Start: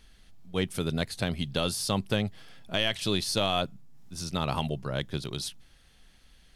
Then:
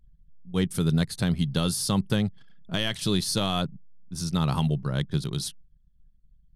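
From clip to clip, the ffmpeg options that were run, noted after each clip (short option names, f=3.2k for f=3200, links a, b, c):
-af "anlmdn=0.00631,equalizer=f=160:t=o:w=0.67:g=8,equalizer=f=630:t=o:w=0.67:g=-6,equalizer=f=2.5k:t=o:w=0.67:g=-6,equalizer=f=10k:t=o:w=0.67:g=3,volume=2dB"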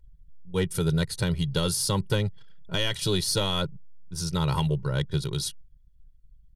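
-af "aecho=1:1:2.1:0.75,asoftclip=type=tanh:threshold=-12.5dB"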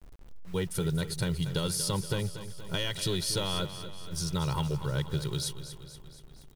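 -filter_complex "[0:a]acompressor=threshold=-31dB:ratio=2,acrusher=bits=8:mix=0:aa=0.000001,asplit=2[a][b];[b]aecho=0:1:237|474|711|948|1185|1422:0.251|0.146|0.0845|0.049|0.0284|0.0165[c];[a][c]amix=inputs=2:normalize=0"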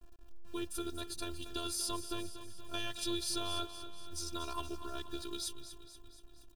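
-af "afftfilt=real='hypot(re,im)*cos(PI*b)':imag='0':win_size=512:overlap=0.75,asuperstop=centerf=2100:order=4:qfactor=5.7,volume=-2dB"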